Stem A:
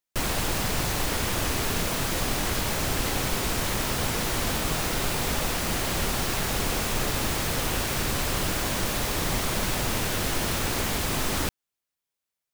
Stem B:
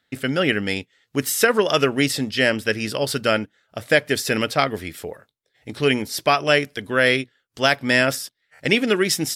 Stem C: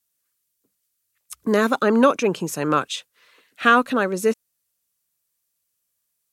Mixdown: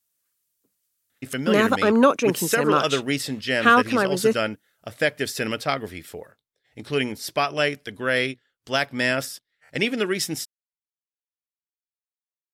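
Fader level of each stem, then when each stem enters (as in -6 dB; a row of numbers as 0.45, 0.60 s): off, -5.0 dB, -0.5 dB; off, 1.10 s, 0.00 s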